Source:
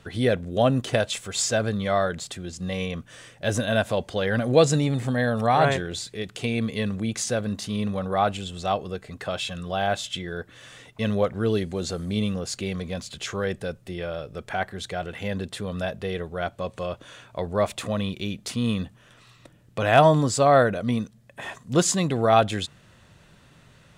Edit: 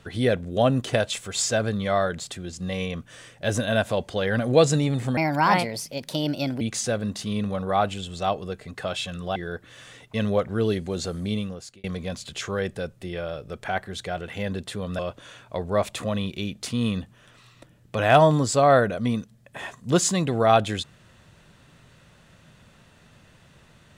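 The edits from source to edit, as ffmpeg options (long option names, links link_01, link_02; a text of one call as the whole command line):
ffmpeg -i in.wav -filter_complex "[0:a]asplit=6[link_01][link_02][link_03][link_04][link_05][link_06];[link_01]atrim=end=5.174[link_07];[link_02]atrim=start=5.17:end=7.04,asetpts=PTS-STARTPTS,asetrate=57330,aresample=44100,atrim=end_sample=63436,asetpts=PTS-STARTPTS[link_08];[link_03]atrim=start=7.036:end=9.792[link_09];[link_04]atrim=start=10.208:end=12.69,asetpts=PTS-STARTPTS,afade=type=out:start_time=1.862:duration=0.62[link_10];[link_05]atrim=start=12.69:end=15.842,asetpts=PTS-STARTPTS,afade=type=in:duration=0.004:curve=hsin[link_11];[link_06]atrim=start=16.818[link_12];[link_07][link_08]acrossfade=duration=0.004:curve1=hsin:curve2=hsin[link_13];[link_13][link_09]acrossfade=duration=0.004:curve1=hsin:curve2=hsin[link_14];[link_10][link_11]concat=n=2:v=0:a=1[link_15];[link_14][link_15]acrossfade=duration=0.004:curve1=hsin:curve2=hsin[link_16];[link_16][link_12]acrossfade=duration=0.004:curve1=hsin:curve2=hsin" out.wav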